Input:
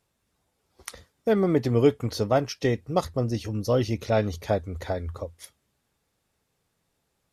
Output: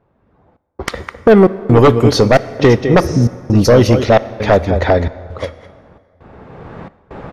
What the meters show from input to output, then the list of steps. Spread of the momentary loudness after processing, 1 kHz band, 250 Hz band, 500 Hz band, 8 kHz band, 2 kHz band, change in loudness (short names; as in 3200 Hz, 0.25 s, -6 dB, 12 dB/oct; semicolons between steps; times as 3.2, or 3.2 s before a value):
17 LU, +14.5 dB, +14.0 dB, +13.5 dB, +12.0 dB, +16.5 dB, +14.0 dB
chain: recorder AGC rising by 16 dB/s; on a send: echo 0.207 s -11 dB; on the sum: low-pass opened by the level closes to 1100 Hz, open at -19.5 dBFS; spectral repair 3.03–3.25, 320–9000 Hz after; step gate "xxxxx..x" 133 bpm -60 dB; low shelf 100 Hz -5 dB; sine folder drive 10 dB, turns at -6 dBFS; high shelf 4100 Hz -7.5 dB; plate-style reverb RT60 2.2 s, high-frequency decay 0.65×, DRR 15.5 dB; gain +3.5 dB